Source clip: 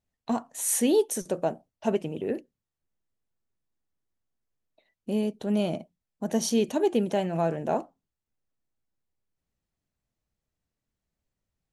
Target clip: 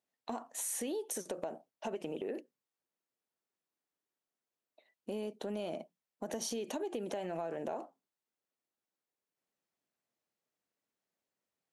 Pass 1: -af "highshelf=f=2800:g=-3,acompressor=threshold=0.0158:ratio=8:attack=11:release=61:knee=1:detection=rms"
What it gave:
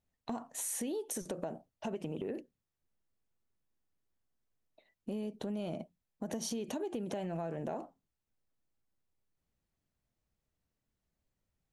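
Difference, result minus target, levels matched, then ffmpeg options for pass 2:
250 Hz band +3.0 dB
-af "highpass=330,highshelf=f=2800:g=-3,acompressor=threshold=0.0158:ratio=8:attack=11:release=61:knee=1:detection=rms"

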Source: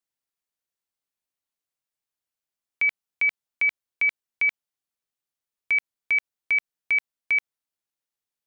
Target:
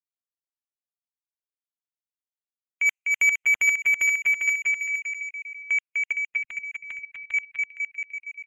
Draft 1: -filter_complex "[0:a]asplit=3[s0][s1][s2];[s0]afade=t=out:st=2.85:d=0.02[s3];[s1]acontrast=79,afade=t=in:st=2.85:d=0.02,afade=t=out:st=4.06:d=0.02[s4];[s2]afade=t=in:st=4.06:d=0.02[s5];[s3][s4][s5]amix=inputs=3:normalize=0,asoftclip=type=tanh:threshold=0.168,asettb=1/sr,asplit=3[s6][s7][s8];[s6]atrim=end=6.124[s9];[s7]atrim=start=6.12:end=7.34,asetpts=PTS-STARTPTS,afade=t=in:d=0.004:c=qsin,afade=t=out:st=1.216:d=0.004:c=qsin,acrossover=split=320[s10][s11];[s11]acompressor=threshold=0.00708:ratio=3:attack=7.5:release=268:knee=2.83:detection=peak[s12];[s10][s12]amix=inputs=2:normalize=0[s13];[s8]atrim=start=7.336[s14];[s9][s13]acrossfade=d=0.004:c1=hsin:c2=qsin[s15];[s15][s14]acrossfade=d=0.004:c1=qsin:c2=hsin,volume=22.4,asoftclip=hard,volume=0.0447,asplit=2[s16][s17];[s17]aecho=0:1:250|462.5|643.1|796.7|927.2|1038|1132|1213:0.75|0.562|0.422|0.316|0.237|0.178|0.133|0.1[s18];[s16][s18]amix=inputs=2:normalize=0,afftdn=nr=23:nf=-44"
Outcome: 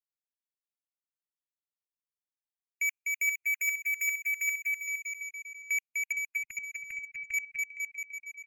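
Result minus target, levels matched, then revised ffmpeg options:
overload inside the chain: distortion +23 dB
-filter_complex "[0:a]asplit=3[s0][s1][s2];[s0]afade=t=out:st=2.85:d=0.02[s3];[s1]acontrast=79,afade=t=in:st=2.85:d=0.02,afade=t=out:st=4.06:d=0.02[s4];[s2]afade=t=in:st=4.06:d=0.02[s5];[s3][s4][s5]amix=inputs=3:normalize=0,asoftclip=type=tanh:threshold=0.168,asettb=1/sr,asplit=3[s6][s7][s8];[s6]atrim=end=6.124[s9];[s7]atrim=start=6.12:end=7.34,asetpts=PTS-STARTPTS,afade=t=in:d=0.004:c=qsin,afade=t=out:st=1.216:d=0.004:c=qsin,acrossover=split=320[s10][s11];[s11]acompressor=threshold=0.00708:ratio=3:attack=7.5:release=268:knee=2.83:detection=peak[s12];[s10][s12]amix=inputs=2:normalize=0[s13];[s8]atrim=start=7.336[s14];[s9][s13]acrossfade=d=0.004:c1=hsin:c2=qsin[s15];[s15][s14]acrossfade=d=0.004:c1=qsin:c2=hsin,volume=6.68,asoftclip=hard,volume=0.15,asplit=2[s16][s17];[s17]aecho=0:1:250|462.5|643.1|796.7|927.2|1038|1132|1213:0.75|0.562|0.422|0.316|0.237|0.178|0.133|0.1[s18];[s16][s18]amix=inputs=2:normalize=0,afftdn=nr=23:nf=-44"

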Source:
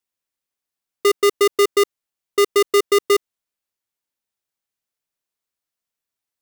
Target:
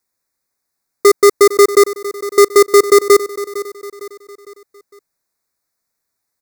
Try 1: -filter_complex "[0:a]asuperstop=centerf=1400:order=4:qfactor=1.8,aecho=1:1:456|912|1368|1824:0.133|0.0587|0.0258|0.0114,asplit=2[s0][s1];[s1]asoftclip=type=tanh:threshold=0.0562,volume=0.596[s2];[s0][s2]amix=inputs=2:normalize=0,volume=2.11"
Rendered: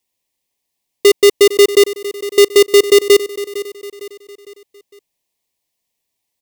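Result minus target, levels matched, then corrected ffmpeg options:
1 kHz band -12.5 dB
-filter_complex "[0:a]asuperstop=centerf=3000:order=4:qfactor=1.8,aecho=1:1:456|912|1368|1824:0.133|0.0587|0.0258|0.0114,asplit=2[s0][s1];[s1]asoftclip=type=tanh:threshold=0.0562,volume=0.596[s2];[s0][s2]amix=inputs=2:normalize=0,volume=2.11"

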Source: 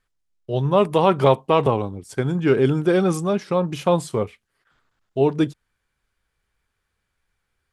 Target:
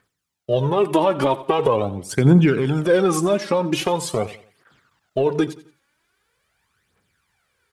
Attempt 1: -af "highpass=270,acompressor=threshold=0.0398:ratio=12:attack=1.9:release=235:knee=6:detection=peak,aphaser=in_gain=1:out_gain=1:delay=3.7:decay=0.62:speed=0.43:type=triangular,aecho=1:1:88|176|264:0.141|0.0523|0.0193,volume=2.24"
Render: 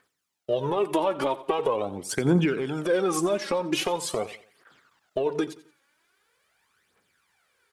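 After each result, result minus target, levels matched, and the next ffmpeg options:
compression: peak gain reduction +7 dB; 125 Hz band -4.5 dB
-af "highpass=270,acompressor=threshold=0.106:ratio=12:attack=1.9:release=235:knee=6:detection=peak,aphaser=in_gain=1:out_gain=1:delay=3.7:decay=0.62:speed=0.43:type=triangular,aecho=1:1:88|176|264:0.141|0.0523|0.0193,volume=2.24"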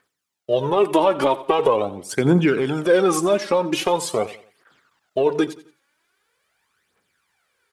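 125 Hz band -6.5 dB
-af "highpass=130,acompressor=threshold=0.106:ratio=12:attack=1.9:release=235:knee=6:detection=peak,aphaser=in_gain=1:out_gain=1:delay=3.7:decay=0.62:speed=0.43:type=triangular,aecho=1:1:88|176|264:0.141|0.0523|0.0193,volume=2.24"

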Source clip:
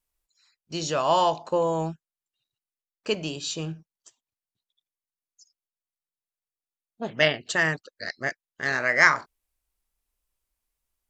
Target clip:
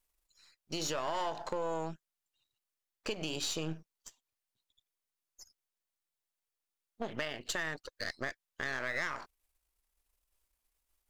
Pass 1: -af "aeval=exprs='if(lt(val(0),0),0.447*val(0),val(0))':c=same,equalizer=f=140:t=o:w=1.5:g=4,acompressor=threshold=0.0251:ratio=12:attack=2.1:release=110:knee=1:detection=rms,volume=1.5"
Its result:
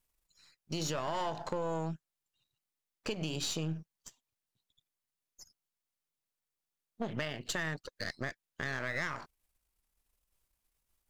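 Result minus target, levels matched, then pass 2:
125 Hz band +7.0 dB
-af "aeval=exprs='if(lt(val(0),0),0.447*val(0),val(0))':c=same,equalizer=f=140:t=o:w=1.5:g=-6,acompressor=threshold=0.0251:ratio=12:attack=2.1:release=110:knee=1:detection=rms,volume=1.5"

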